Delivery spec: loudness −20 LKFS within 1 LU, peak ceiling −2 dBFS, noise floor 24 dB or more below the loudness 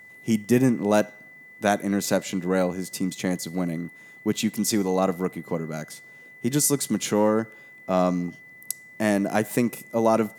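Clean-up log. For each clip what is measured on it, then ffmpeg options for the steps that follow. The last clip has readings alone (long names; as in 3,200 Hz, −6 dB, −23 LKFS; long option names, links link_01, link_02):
interfering tone 2,000 Hz; level of the tone −45 dBFS; integrated loudness −25.0 LKFS; sample peak −6.0 dBFS; target loudness −20.0 LKFS
→ -af "bandreject=frequency=2000:width=30"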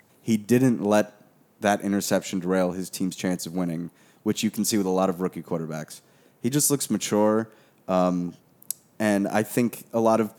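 interfering tone none found; integrated loudness −25.0 LKFS; sample peak −6.0 dBFS; target loudness −20.0 LKFS
→ -af "volume=5dB,alimiter=limit=-2dB:level=0:latency=1"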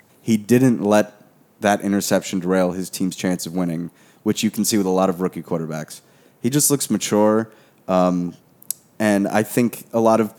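integrated loudness −20.0 LKFS; sample peak −2.0 dBFS; background noise floor −55 dBFS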